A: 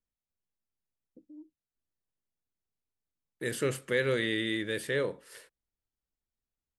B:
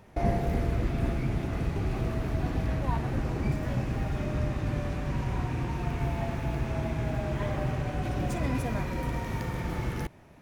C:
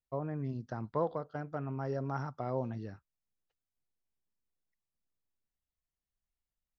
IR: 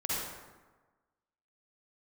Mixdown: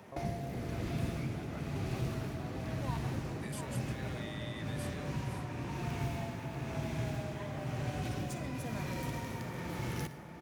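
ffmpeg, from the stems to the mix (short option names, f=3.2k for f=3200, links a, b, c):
-filter_complex "[0:a]highpass=f=680:p=1,volume=-6.5dB,asplit=2[a][b];[1:a]highpass=140,tremolo=f=1:d=0.6,volume=1.5dB,asplit=3[c][d][e];[d]volume=-17.5dB[f];[e]volume=-12dB[g];[2:a]volume=1.5dB[h];[b]apad=whole_len=459305[i];[c][i]sidechaincompress=threshold=-42dB:ratio=8:attack=45:release=161[j];[a][h]amix=inputs=2:normalize=0,alimiter=level_in=12dB:limit=-24dB:level=0:latency=1,volume=-12dB,volume=0dB[k];[3:a]atrim=start_sample=2205[l];[f][l]afir=irnorm=-1:irlink=0[m];[g]aecho=0:1:701:1[n];[j][k][m][n]amix=inputs=4:normalize=0,acrossover=split=140|3000[o][p][q];[p]acompressor=threshold=-40dB:ratio=4[r];[o][r][q]amix=inputs=3:normalize=0"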